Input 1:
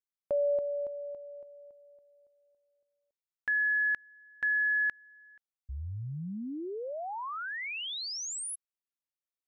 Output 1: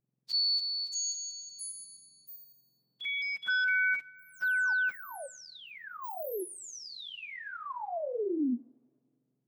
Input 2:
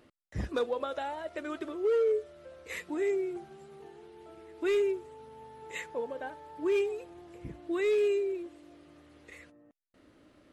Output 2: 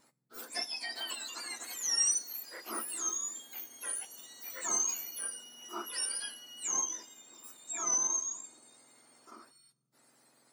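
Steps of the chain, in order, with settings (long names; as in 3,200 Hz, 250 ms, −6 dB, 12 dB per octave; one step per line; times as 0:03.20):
frequency axis turned over on the octave scale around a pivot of 1,600 Hz
coupled-rooms reverb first 0.67 s, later 2.5 s, from −22 dB, DRR 18 dB
delay with pitch and tempo change per echo 729 ms, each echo +7 semitones, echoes 3, each echo −6 dB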